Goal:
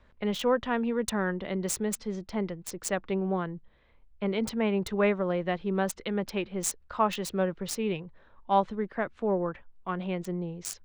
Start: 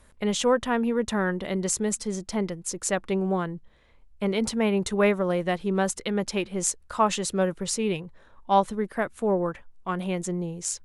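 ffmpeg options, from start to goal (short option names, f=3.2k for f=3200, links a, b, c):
-filter_complex "[0:a]asplit=3[a][b][c];[a]afade=t=out:st=0.64:d=0.02[d];[b]aemphasis=mode=production:type=50fm,afade=t=in:st=0.64:d=0.02,afade=t=out:st=1.09:d=0.02[e];[c]afade=t=in:st=1.09:d=0.02[f];[d][e][f]amix=inputs=3:normalize=0,acrossover=split=280|4600[g][h][i];[i]aeval=exprs='val(0)*gte(abs(val(0)),0.0531)':c=same[j];[g][h][j]amix=inputs=3:normalize=0,volume=-3.5dB"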